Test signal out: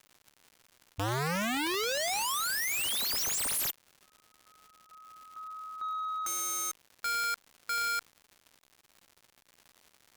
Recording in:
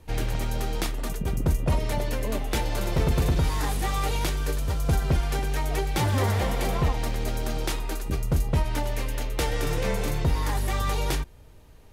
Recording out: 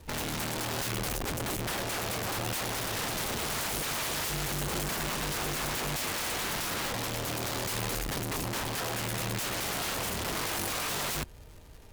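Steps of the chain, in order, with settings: crackle 220/s -45 dBFS; wrapped overs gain 26 dB; added harmonics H 5 -23 dB, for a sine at -26 dBFS; gain -2 dB

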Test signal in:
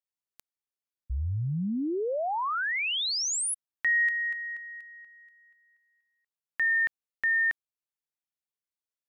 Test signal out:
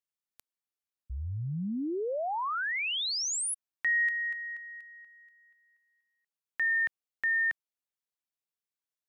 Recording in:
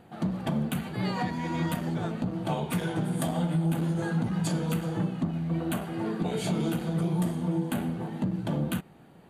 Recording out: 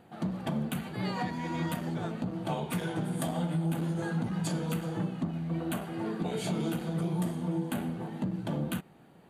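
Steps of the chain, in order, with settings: low shelf 92 Hz -5.5 dB; gain -2.5 dB

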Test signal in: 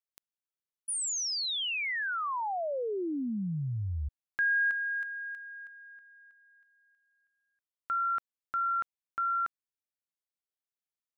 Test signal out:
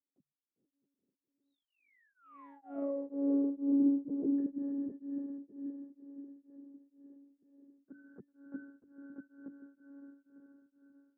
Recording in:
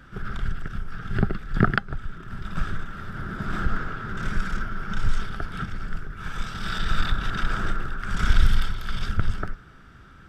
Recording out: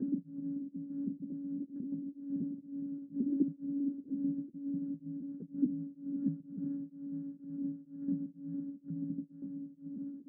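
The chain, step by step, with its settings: reverb removal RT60 1.8 s; tilt -4.5 dB/oct; compressor 20:1, threshold -27 dBFS; frequency shift +140 Hz; on a send: diffused feedback echo 0.52 s, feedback 54%, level -4.5 dB; on the sum: monotone LPC vocoder at 8 kHz 280 Hz; Butterworth band-pass 300 Hz, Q 1.4; beating tremolo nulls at 2.1 Hz; gain +5.5 dB

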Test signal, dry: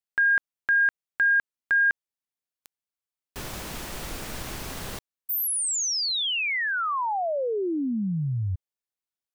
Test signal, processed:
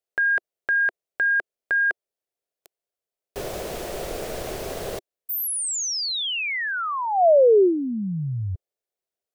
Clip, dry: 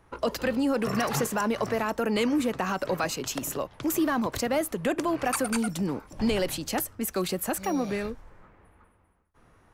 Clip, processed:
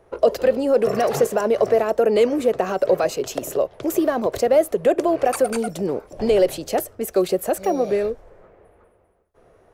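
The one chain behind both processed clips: band shelf 510 Hz +12.5 dB 1.2 oct

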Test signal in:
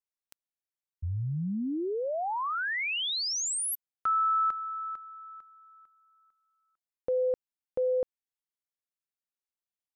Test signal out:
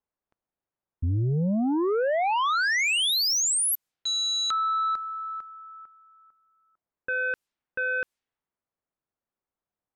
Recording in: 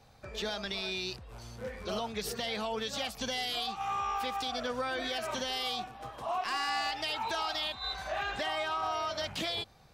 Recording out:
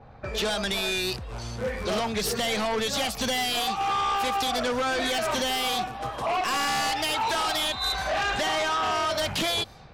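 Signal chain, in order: sine folder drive 8 dB, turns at -22.5 dBFS; low-pass opened by the level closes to 1100 Hz, open at -29 dBFS

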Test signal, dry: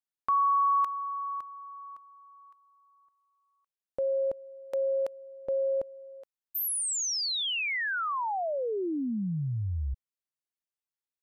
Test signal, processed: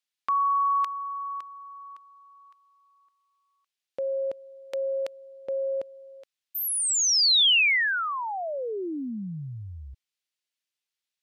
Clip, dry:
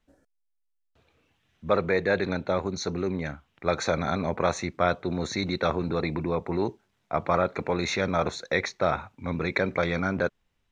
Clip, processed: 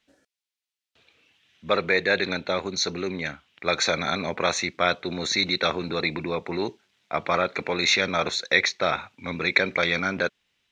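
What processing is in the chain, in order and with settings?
weighting filter D

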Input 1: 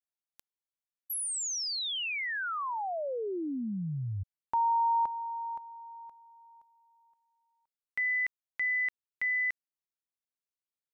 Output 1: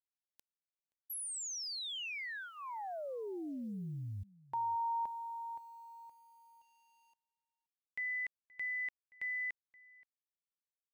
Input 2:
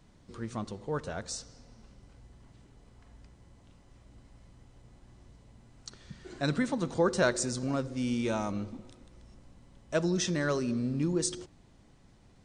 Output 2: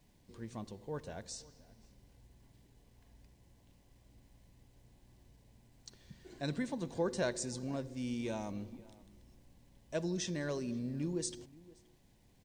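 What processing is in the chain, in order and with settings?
bit-crush 11-bit; bell 1300 Hz -14 dB 0.25 oct; outdoor echo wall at 90 m, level -21 dB; gain -7.5 dB

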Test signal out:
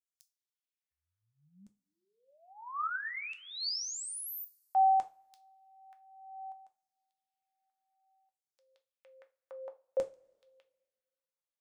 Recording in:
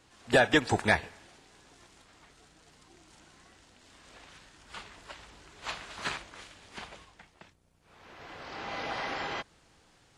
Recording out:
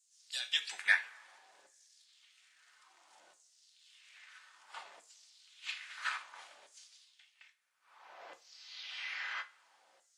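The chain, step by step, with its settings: LFO high-pass saw down 0.6 Hz 540–7600 Hz; two-slope reverb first 0.26 s, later 1.7 s, from -27 dB, DRR 6 dB; gain -7.5 dB

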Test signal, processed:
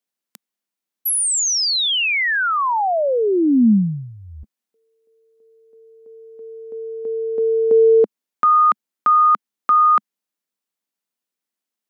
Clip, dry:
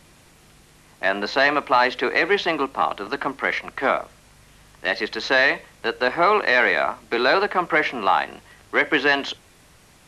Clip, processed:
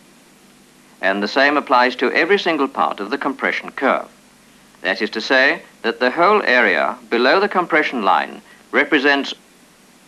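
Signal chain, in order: resonant low shelf 150 Hz -12 dB, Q 3; gain +3.5 dB

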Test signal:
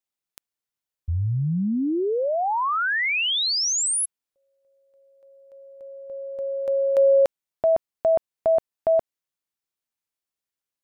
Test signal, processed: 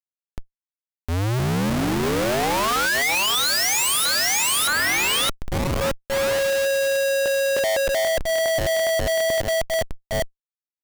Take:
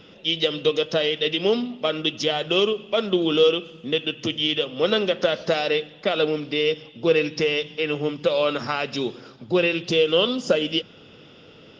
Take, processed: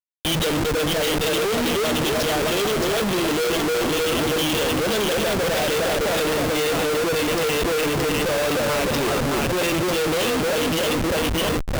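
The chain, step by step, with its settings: split-band echo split 720 Hz, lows 0.307 s, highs 0.62 s, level -4 dB; Schmitt trigger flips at -30.5 dBFS; limiter -28.5 dBFS; gain +8 dB

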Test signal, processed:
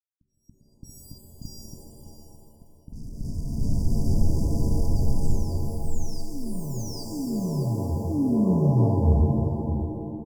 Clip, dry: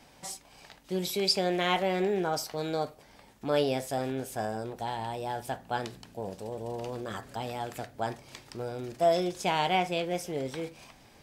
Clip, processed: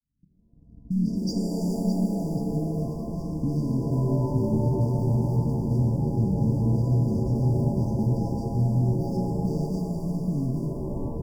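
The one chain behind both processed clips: opening faded in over 1.71 s; recorder AGC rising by 5.4 dB/s; RIAA curve playback; low-pass opened by the level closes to 350 Hz, open at -15 dBFS; low shelf 73 Hz -4.5 dB; sample leveller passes 1; compressor 6:1, threshold -27 dBFS; sample leveller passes 2; echoes that change speed 0.195 s, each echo +3 st, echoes 2, each echo -6 dB; brick-wall FIR band-stop 310–4600 Hz; echo 0.613 s -11 dB; shimmer reverb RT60 2 s, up +7 st, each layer -2 dB, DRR 3.5 dB

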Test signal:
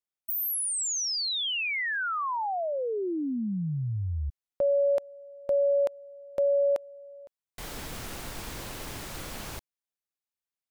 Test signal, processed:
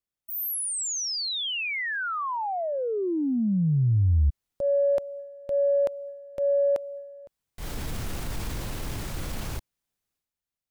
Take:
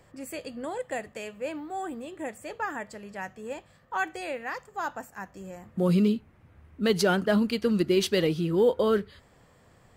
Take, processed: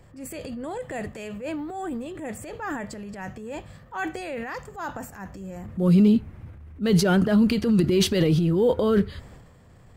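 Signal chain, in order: transient shaper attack -6 dB, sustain +8 dB; low shelf 220 Hz +11.5 dB

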